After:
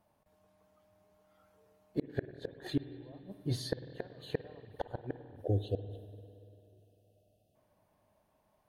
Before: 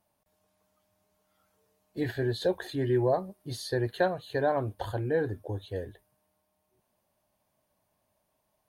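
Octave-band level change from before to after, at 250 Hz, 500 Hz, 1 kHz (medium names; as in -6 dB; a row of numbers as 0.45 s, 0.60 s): -6.5 dB, -11.5 dB, -15.5 dB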